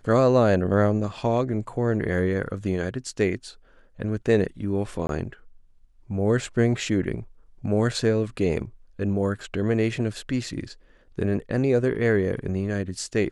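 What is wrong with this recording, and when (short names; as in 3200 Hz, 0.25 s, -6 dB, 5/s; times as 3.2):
5.07–5.09 gap 22 ms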